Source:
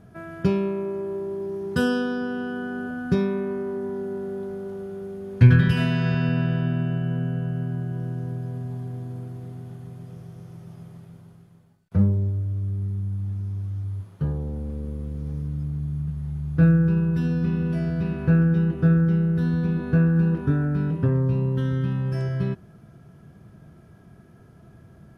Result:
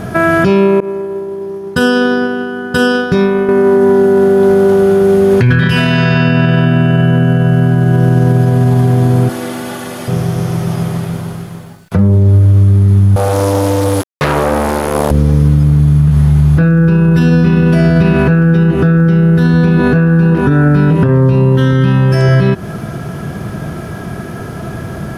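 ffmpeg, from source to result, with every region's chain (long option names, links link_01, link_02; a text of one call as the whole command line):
ffmpeg -i in.wav -filter_complex "[0:a]asettb=1/sr,asplit=3[link_01][link_02][link_03];[link_01]atrim=end=0.804[link_04];[link_02]atrim=start=0.8:end=3.49,asetpts=PTS-STARTPTS,afade=type=in:duration=0.004:curve=qsin,afade=type=out:start_time=2.686:duration=0.004:curve=qsin,agate=range=-33dB:threshold=-18dB:ratio=3:release=100:detection=peak,aecho=1:1:980:0.398,atrim=end_sample=118629[link_05];[link_03]atrim=start=3.486[link_06];[link_04][link_05]acrossfade=duration=0.004:curve1=hsin:curve2=qsin[link_07];[link_07][link_06]acrossfade=duration=0.004:curve1=qsin:curve2=hsin,asettb=1/sr,asplit=3[link_08][link_09][link_10];[link_08]atrim=end=9.294[link_11];[link_09]atrim=start=9.29:end=10.08,asetpts=PTS-STARTPTS,afade=type=in:duration=0.004:curve=qsin,afade=type=out:start_time=0.786:duration=0.004:curve=qsin,highpass=frequency=690:poles=1,aecho=1:1:3.5:0.95,atrim=end_sample=34839[link_12];[link_10]atrim=start=10.076[link_13];[link_11][link_12]acrossfade=duration=0.004:curve1=hsin:curve2=qsin[link_14];[link_14][link_13]acrossfade=duration=0.004:curve1=qsin:curve2=hsin,asettb=1/sr,asplit=3[link_15][link_16][link_17];[link_15]atrim=end=13.164[link_18];[link_16]atrim=start=13.16:end=15.11,asetpts=PTS-STARTPTS,afade=type=in:duration=0.004:curve=qsin,afade=type=out:start_time=1.946:duration=0.004:curve=qsin,acrusher=bits=4:mix=0:aa=0.5,bass=frequency=250:gain=-13,treble=frequency=4000:gain=8[link_19];[link_17]atrim=start=15.106[link_20];[link_18][link_19]acrossfade=duration=0.004:curve1=hsin:curve2=qsin[link_21];[link_21][link_20]acrossfade=duration=0.004:curve1=qsin:curve2=hsin,lowshelf=frequency=280:gain=-7.5,acompressor=threshold=-35dB:ratio=6,alimiter=level_in=32.5dB:limit=-1dB:release=50:level=0:latency=1,volume=-1dB" out.wav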